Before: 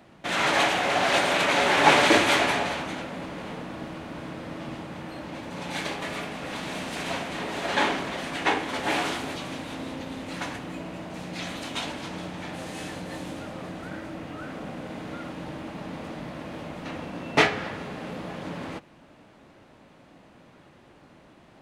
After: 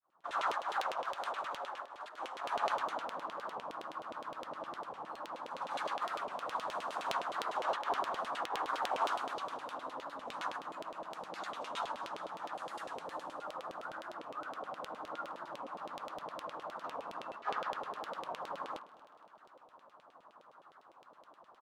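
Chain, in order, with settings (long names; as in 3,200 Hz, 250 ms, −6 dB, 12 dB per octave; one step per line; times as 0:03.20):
fade in at the beginning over 0.69 s
compressor whose output falls as the input rises −27 dBFS, ratio −0.5
high shelf with overshoot 1,600 Hz −11 dB, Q 3
hum removal 58.08 Hz, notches 36
auto-filter band-pass saw down 9.7 Hz 450–3,200 Hz
first-order pre-emphasis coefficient 0.9
on a send: repeating echo 232 ms, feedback 46%, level −20.5 dB
on the sum: wow of a warped record 45 rpm, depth 160 cents
level +14 dB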